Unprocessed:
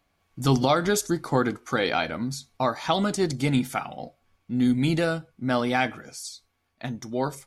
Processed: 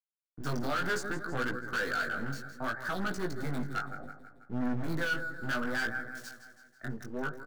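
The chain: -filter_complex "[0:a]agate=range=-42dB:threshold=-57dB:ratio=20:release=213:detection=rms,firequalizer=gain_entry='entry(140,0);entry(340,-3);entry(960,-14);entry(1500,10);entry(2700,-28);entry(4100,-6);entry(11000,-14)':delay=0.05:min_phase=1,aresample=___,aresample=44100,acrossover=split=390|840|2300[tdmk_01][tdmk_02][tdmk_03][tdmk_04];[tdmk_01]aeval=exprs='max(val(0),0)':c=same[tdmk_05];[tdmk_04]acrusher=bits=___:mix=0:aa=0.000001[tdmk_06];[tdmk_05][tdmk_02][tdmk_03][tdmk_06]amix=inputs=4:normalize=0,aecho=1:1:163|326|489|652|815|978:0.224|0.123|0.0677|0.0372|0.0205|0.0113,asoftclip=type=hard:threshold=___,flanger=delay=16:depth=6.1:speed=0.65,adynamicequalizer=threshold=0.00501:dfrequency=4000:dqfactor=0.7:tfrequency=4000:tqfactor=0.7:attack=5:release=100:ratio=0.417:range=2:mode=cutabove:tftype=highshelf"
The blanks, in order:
22050, 6, -25dB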